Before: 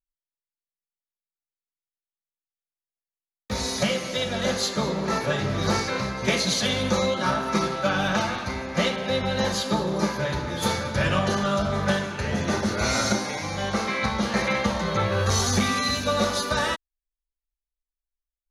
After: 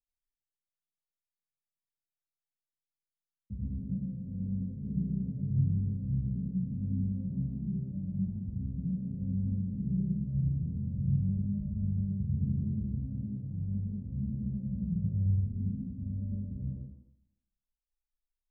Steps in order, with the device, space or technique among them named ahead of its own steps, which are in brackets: club heard from the street (limiter -17.5 dBFS, peak gain reduction 8.5 dB; LPF 180 Hz 24 dB/oct; reverb RT60 0.90 s, pre-delay 78 ms, DRR -5.5 dB); gain -5.5 dB

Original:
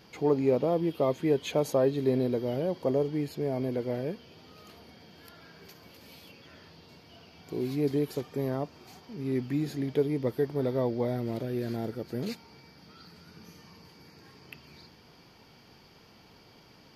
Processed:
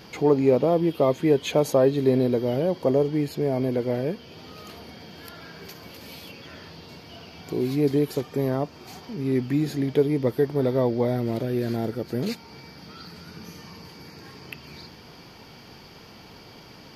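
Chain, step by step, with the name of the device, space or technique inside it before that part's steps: parallel compression (in parallel at -4 dB: compressor, threshold -46 dBFS, peak gain reduction 23.5 dB); on the sum: gain +5.5 dB

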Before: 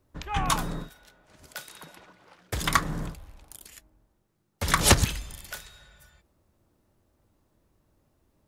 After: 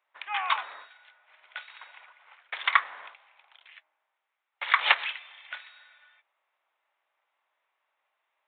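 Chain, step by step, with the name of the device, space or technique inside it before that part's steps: musical greeting card (downsampling 8000 Hz; HPF 800 Hz 24 dB/oct; bell 2200 Hz +7 dB 0.54 oct)

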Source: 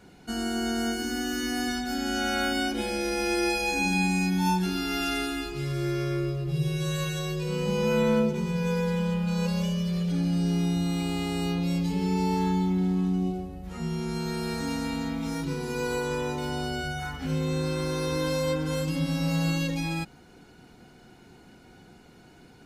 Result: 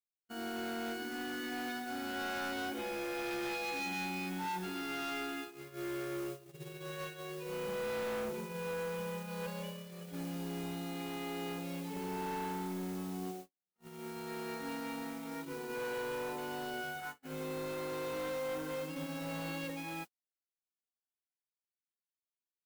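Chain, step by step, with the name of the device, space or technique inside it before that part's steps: aircraft radio (BPF 330–2600 Hz; hard clip -30.5 dBFS, distortion -10 dB; white noise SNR 14 dB; gate -36 dBFS, range -55 dB); gain -5 dB

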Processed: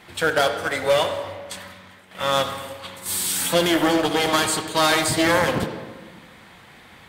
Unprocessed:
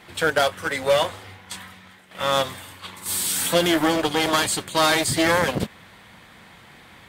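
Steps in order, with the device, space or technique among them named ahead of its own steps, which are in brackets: filtered reverb send (on a send: HPF 170 Hz 12 dB/oct + LPF 5900 Hz + reverb RT60 1.4 s, pre-delay 53 ms, DRR 7 dB)

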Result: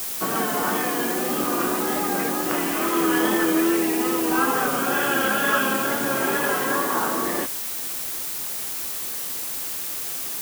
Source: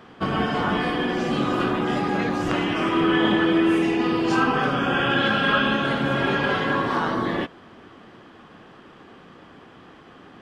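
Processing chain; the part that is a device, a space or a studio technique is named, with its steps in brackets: wax cylinder (BPF 260–2200 Hz; wow and flutter; white noise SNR 11 dB); high shelf 6500 Hz +8.5 dB

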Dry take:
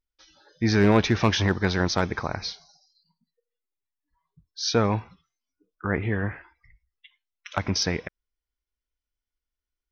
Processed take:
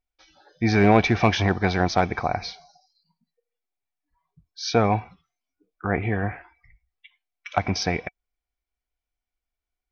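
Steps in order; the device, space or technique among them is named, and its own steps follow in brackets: inside a helmet (high shelf 4800 Hz -7.5 dB; small resonant body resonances 730/2300 Hz, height 14 dB, ringing for 45 ms); gain +1 dB

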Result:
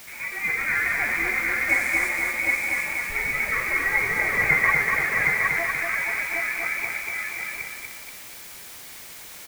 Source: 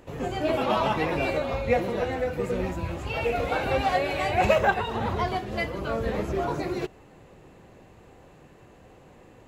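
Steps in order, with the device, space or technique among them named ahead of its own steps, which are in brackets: scrambled radio voice (BPF 320–3000 Hz; inverted band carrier 2700 Hz; white noise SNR 15 dB); 1.69–2.09 bell 8100 Hz +9.5 dB 1.2 oct; echo 0.765 s -3.5 dB; lo-fi delay 0.24 s, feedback 55%, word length 8-bit, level -3.5 dB

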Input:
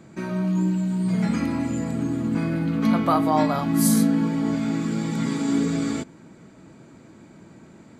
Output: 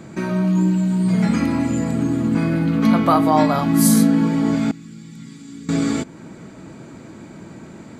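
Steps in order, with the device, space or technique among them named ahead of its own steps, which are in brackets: parallel compression (in parallel at -2 dB: compressor, threshold -36 dBFS, peak gain reduction 19.5 dB); 4.71–5.69 on the sum: passive tone stack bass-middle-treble 6-0-2; gain +4 dB

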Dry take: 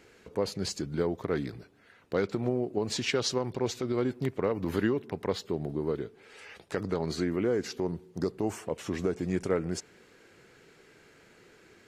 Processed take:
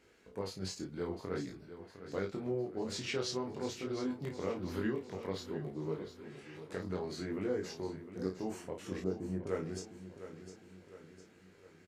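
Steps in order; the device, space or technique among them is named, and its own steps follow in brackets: double-tracked vocal (doubler 32 ms -6 dB; chorus 0.52 Hz, delay 19.5 ms, depth 3 ms); 9.04–9.47 LPF 1000 Hz 12 dB/oct; feedback echo 0.707 s, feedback 50%, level -12 dB; gain -6 dB

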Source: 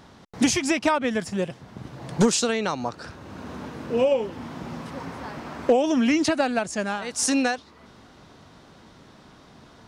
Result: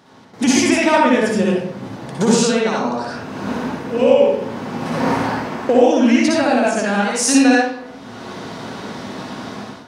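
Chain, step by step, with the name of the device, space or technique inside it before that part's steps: far laptop microphone (reverb RT60 0.70 s, pre-delay 55 ms, DRR -4.5 dB; HPF 150 Hz 12 dB/oct; AGC gain up to 16 dB); gain -1 dB

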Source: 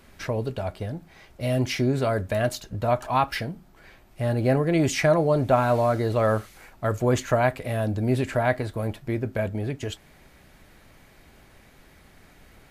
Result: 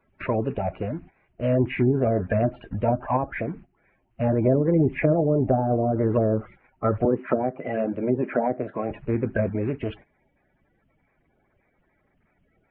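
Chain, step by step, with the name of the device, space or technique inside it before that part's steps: Chebyshev low-pass 2600 Hz, order 4; treble ducked by the level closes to 470 Hz, closed at -18.5 dBFS; gate -45 dBFS, range -17 dB; 7.05–8.91 HPF 190 Hz 24 dB/oct; clip after many re-uploads (LPF 4400 Hz; bin magnitudes rounded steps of 30 dB); gain +4 dB

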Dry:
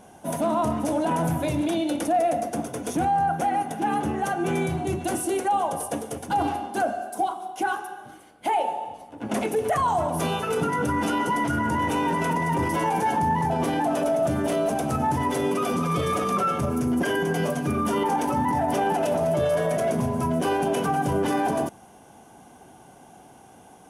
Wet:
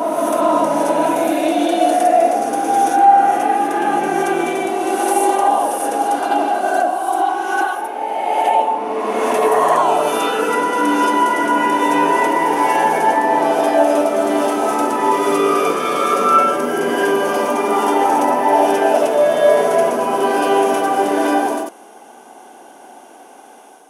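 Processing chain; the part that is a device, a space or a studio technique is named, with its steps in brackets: ghost voice (reverse; reverb RT60 3.1 s, pre-delay 42 ms, DRR -5 dB; reverse; HPF 310 Hz 24 dB/oct); gain +4 dB

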